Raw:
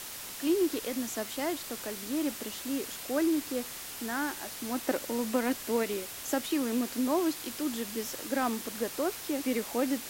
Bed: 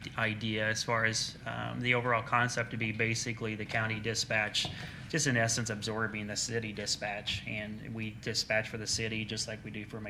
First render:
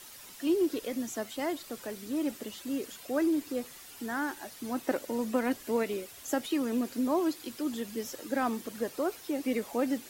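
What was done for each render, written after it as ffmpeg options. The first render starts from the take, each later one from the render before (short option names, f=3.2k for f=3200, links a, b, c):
-af "afftdn=nr=10:nf=-42"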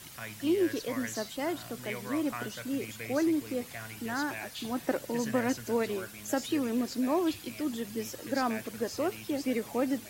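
-filter_complex "[1:a]volume=-11dB[a];[0:a][a]amix=inputs=2:normalize=0"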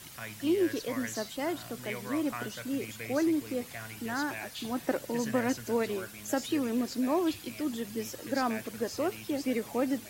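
-af anull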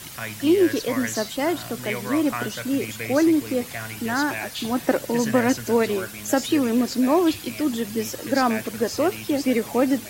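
-af "volume=9.5dB"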